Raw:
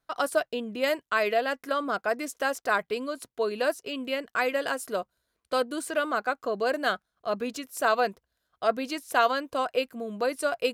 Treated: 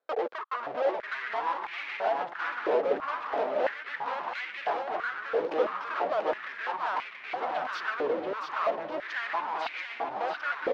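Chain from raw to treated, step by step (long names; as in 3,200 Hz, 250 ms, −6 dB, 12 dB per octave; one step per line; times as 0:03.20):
pitch shifter gated in a rhythm −8.5 semitones, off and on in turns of 127 ms
treble cut that deepens with the level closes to 1,600 Hz, closed at −32.5 dBFS
downward compressor 6 to 1, threshold −43 dBFS, peak gain reduction 22 dB
leveller curve on the samples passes 5
soft clipping −37.5 dBFS, distortion −15 dB
delay with pitch and tempo change per echo 405 ms, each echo −3 semitones, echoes 3
high-frequency loss of the air 260 metres
single-tap delay 683 ms −5 dB
high-pass on a step sequencer 3 Hz 490–2,200 Hz
level +6 dB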